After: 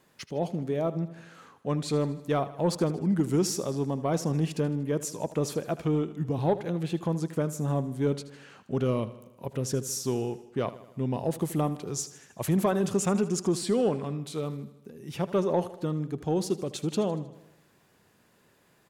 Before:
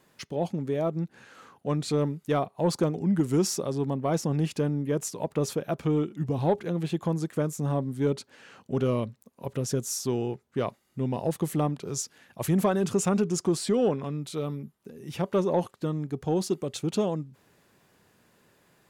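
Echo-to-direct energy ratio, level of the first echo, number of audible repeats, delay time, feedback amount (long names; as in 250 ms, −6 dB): −14.0 dB, −16.0 dB, 5, 78 ms, 58%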